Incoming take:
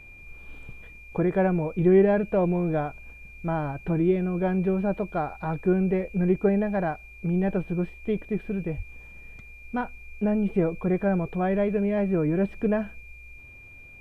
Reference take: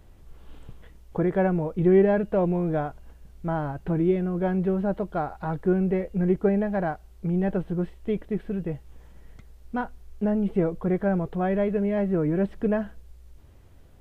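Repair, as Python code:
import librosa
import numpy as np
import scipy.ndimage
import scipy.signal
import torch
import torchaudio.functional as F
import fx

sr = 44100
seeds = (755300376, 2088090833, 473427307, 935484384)

y = fx.notch(x, sr, hz=2400.0, q=30.0)
y = fx.highpass(y, sr, hz=140.0, slope=24, at=(8.76, 8.88), fade=0.02)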